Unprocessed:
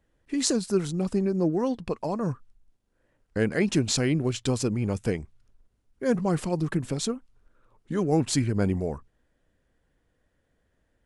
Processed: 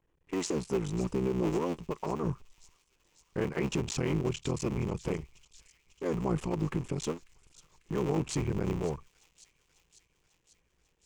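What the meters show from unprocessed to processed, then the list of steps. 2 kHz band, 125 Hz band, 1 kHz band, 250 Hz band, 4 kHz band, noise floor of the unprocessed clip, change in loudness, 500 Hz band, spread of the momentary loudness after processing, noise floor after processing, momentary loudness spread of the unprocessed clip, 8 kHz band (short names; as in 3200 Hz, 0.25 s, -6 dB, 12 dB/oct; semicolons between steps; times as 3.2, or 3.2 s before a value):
-7.0 dB, -5.0 dB, -3.5 dB, -6.5 dB, -9.5 dB, -73 dBFS, -6.0 dB, -5.0 dB, 7 LU, -74 dBFS, 9 LU, -9.5 dB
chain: cycle switcher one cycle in 3, muted; ripple EQ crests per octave 0.73, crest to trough 7 dB; thin delay 0.545 s, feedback 67%, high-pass 3400 Hz, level -15.5 dB; limiter -17 dBFS, peak gain reduction 10.5 dB; high shelf 5600 Hz -9.5 dB; gain -3 dB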